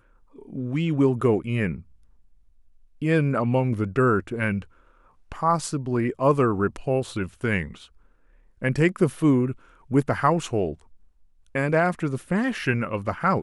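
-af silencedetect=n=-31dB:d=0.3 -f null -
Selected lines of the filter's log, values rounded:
silence_start: 0.00
silence_end: 0.53 | silence_duration: 0.53
silence_start: 1.76
silence_end: 3.02 | silence_duration: 1.25
silence_start: 4.62
silence_end: 5.32 | silence_duration: 0.70
silence_start: 7.71
silence_end: 8.62 | silence_duration: 0.91
silence_start: 9.52
silence_end: 9.91 | silence_duration: 0.39
silence_start: 10.73
silence_end: 11.55 | silence_duration: 0.83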